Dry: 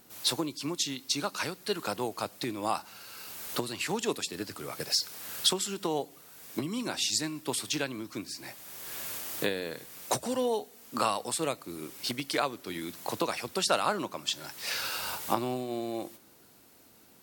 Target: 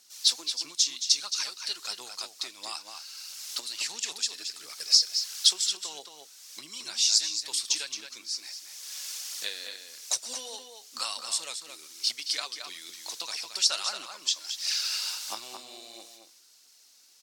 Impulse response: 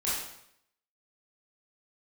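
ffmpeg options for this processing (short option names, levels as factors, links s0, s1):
-filter_complex "[0:a]aphaser=in_gain=1:out_gain=1:delay=4.2:decay=0.39:speed=1.5:type=triangular,bandpass=f=5500:t=q:w=2.1:csg=0,asplit=2[s0][s1];[s1]adelay=221.6,volume=0.501,highshelf=f=4000:g=-4.99[s2];[s0][s2]amix=inputs=2:normalize=0,volume=2.82"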